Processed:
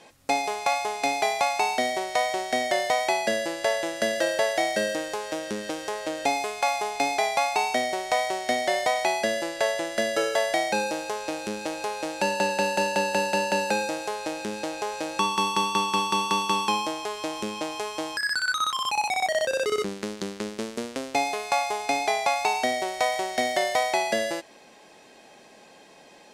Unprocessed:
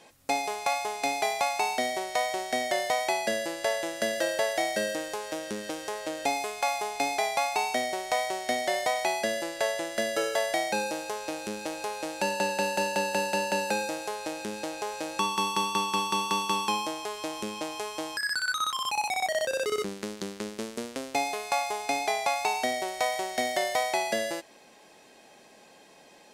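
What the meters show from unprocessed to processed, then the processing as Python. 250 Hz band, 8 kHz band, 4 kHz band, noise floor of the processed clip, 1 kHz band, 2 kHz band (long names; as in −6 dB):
+3.5 dB, +1.5 dB, +3.0 dB, −52 dBFS, +3.5 dB, +3.5 dB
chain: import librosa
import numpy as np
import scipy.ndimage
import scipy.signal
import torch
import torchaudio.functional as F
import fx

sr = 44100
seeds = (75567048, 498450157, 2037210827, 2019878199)

y = fx.high_shelf(x, sr, hz=12000.0, db=-10.5)
y = y * librosa.db_to_amplitude(3.5)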